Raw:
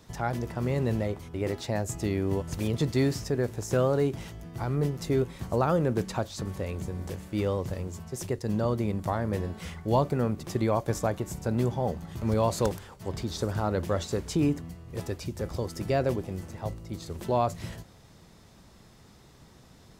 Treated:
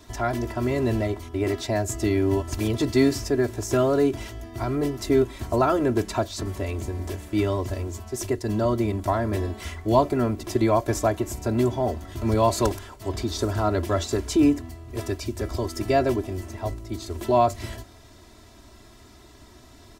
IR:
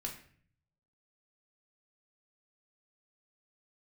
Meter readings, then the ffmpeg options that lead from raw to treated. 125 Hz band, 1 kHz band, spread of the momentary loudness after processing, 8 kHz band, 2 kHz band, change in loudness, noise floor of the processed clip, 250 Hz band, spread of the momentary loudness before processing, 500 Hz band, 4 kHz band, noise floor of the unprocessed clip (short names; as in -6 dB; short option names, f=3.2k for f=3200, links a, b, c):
+1.5 dB, +6.0 dB, 11 LU, +6.0 dB, +5.5 dB, +5.0 dB, -50 dBFS, +6.0 dB, 11 LU, +5.5 dB, +6.0 dB, -55 dBFS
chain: -af "aecho=1:1:3:0.96,volume=3dB"